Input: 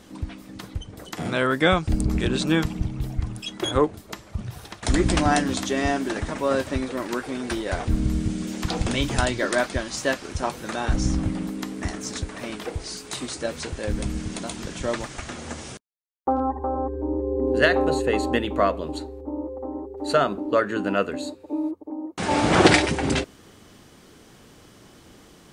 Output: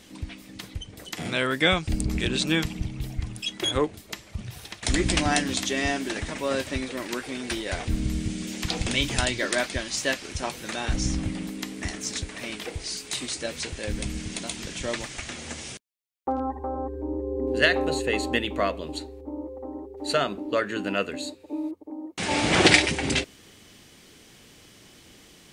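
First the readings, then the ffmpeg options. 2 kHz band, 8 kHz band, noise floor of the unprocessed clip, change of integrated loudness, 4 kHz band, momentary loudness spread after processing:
+0.5 dB, +2.0 dB, -51 dBFS, -2.0 dB, +3.0 dB, 15 LU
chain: -af "highshelf=f=1.7k:t=q:w=1.5:g=6,volume=-4dB"

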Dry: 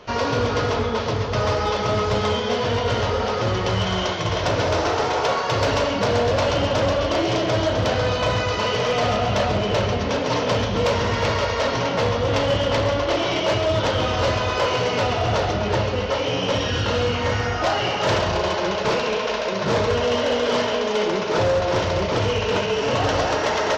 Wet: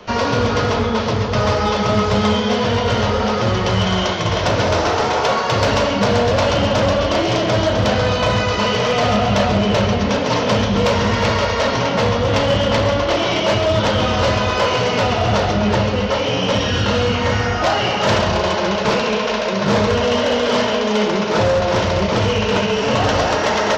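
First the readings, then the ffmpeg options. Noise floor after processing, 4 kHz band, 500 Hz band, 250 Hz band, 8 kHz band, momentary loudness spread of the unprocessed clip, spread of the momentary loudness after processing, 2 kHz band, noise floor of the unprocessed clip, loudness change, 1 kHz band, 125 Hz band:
-20 dBFS, +4.5 dB, +3.5 dB, +7.0 dB, +4.5 dB, 2 LU, 2 LU, +4.5 dB, -24 dBFS, +4.5 dB, +4.5 dB, +5.0 dB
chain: -filter_complex "[0:a]equalizer=f=210:w=6.7:g=10,acrossover=split=310|400|1800[a][b][c][d];[b]alimiter=level_in=10dB:limit=-24dB:level=0:latency=1,volume=-10dB[e];[a][e][c][d]amix=inputs=4:normalize=0,volume=4.5dB"

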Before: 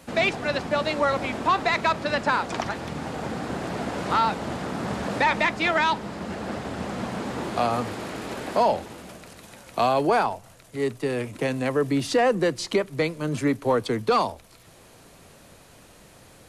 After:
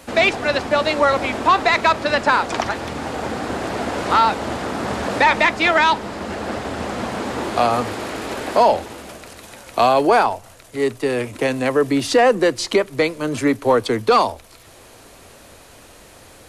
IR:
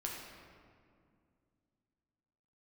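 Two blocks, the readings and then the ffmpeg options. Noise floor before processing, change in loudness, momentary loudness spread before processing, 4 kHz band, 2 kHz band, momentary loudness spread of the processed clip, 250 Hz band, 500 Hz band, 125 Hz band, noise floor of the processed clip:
-51 dBFS, +6.5 dB, 11 LU, +7.0 dB, +7.0 dB, 12 LU, +4.5 dB, +6.5 dB, +1.5 dB, -45 dBFS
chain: -af "equalizer=f=160:w=1.9:g=-9.5,volume=7dB"

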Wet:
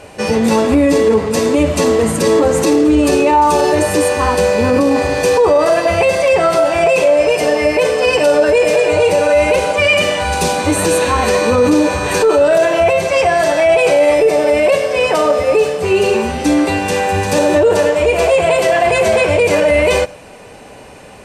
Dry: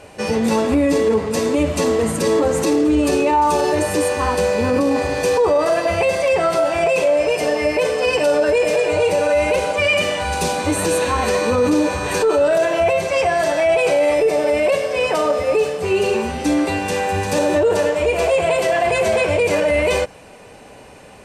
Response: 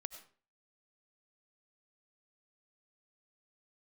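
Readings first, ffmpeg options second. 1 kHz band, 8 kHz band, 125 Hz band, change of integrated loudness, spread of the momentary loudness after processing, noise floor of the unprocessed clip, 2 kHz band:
+5.0 dB, +5.0 dB, +5.0 dB, +5.0 dB, 3 LU, -42 dBFS, +5.0 dB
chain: -filter_complex "[0:a]asplit=2[a][b];[1:a]atrim=start_sample=2205,afade=t=out:st=0.15:d=0.01,atrim=end_sample=7056[c];[b][c]afir=irnorm=-1:irlink=0,volume=-4.5dB[d];[a][d]amix=inputs=2:normalize=0,volume=2dB"

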